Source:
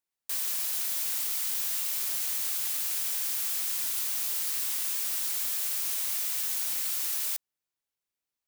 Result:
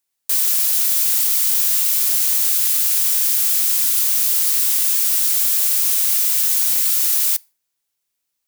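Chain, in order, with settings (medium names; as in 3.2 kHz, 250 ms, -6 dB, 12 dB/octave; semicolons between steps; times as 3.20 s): treble shelf 3.4 kHz +8 dB; on a send: reverberation RT60 0.40 s, pre-delay 4 ms, DRR 21.5 dB; on the sum: trim +6 dB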